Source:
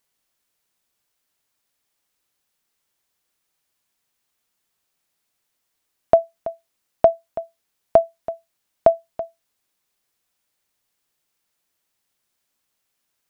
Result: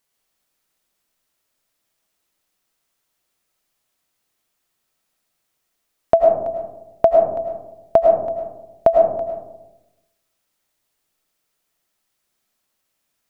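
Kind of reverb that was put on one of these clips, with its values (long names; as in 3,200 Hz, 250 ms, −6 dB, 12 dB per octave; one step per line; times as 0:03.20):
comb and all-pass reverb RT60 0.97 s, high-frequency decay 0.25×, pre-delay 65 ms, DRR 0.5 dB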